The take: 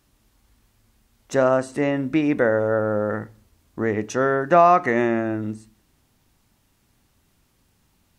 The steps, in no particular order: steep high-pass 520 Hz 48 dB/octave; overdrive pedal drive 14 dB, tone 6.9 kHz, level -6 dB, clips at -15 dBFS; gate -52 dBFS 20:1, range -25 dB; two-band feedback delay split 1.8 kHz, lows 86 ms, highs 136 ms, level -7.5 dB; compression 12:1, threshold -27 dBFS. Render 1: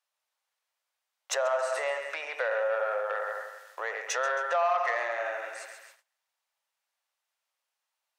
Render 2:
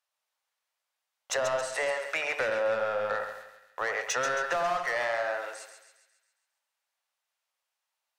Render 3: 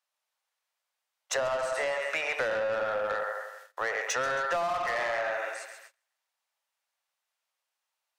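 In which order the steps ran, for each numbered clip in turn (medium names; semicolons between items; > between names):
two-band feedback delay > compression > overdrive pedal > gate > steep high-pass; steep high-pass > overdrive pedal > gate > compression > two-band feedback delay; two-band feedback delay > gate > steep high-pass > overdrive pedal > compression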